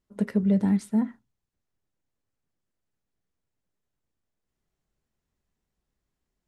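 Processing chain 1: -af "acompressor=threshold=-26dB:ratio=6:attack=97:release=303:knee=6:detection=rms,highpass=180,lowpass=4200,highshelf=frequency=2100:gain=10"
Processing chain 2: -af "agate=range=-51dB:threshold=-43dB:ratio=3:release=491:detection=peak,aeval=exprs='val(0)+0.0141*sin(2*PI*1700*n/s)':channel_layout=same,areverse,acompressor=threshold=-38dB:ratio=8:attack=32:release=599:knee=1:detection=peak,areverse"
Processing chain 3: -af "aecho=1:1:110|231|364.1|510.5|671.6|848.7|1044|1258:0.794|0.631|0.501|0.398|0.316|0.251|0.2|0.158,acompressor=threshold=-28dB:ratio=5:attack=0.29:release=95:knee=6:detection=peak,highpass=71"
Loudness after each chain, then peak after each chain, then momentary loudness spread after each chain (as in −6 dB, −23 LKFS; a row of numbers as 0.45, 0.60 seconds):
−31.5, −38.5, −33.0 LKFS; −17.0, −29.0, −23.5 dBFS; 3, 2, 9 LU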